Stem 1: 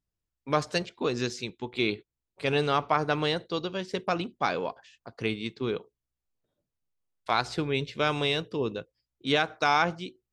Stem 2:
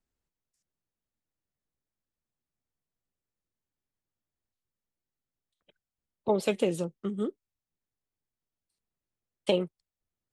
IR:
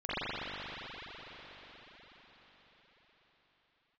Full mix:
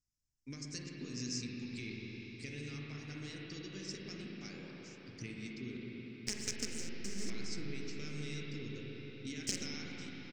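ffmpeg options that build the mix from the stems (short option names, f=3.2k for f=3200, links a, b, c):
-filter_complex "[0:a]acompressor=threshold=-33dB:ratio=6,volume=-6dB,asplit=2[a][b];[b]volume=-5.5dB[c];[1:a]acrusher=bits=4:dc=4:mix=0:aa=0.000001,acompressor=threshold=-34dB:ratio=6,lowshelf=f=150:g=-11,volume=2dB,asplit=2[d][e];[e]volume=-7.5dB[f];[2:a]atrim=start_sample=2205[g];[c][f]amix=inputs=2:normalize=0[h];[h][g]afir=irnorm=-1:irlink=0[i];[a][d][i]amix=inputs=3:normalize=0,firequalizer=gain_entry='entry(110,0);entry(160,-7);entry(240,-2);entry(600,-25);entry(960,-27);entry(2000,-4);entry(3500,-13);entry(5300,11);entry(8000,6);entry(11000,-14)':delay=0.05:min_phase=1"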